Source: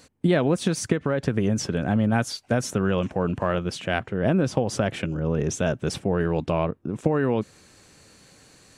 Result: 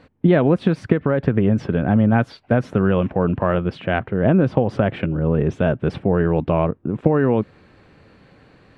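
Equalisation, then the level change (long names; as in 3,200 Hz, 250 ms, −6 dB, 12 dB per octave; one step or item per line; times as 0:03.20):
high-frequency loss of the air 440 metres
+6.5 dB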